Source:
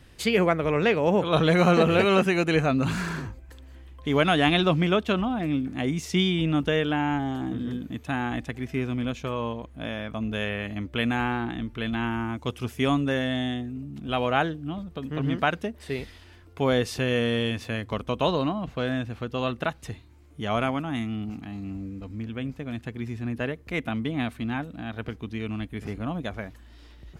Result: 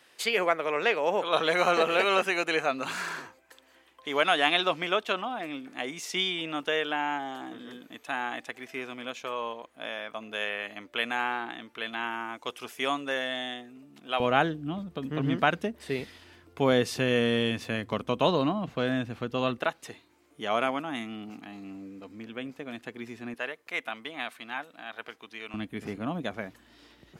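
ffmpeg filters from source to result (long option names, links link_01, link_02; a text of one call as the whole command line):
ffmpeg -i in.wav -af "asetnsamples=nb_out_samples=441:pad=0,asendcmd='14.2 highpass f 140;19.58 highpass f 340;23.34 highpass f 720;25.54 highpass f 180',highpass=560" out.wav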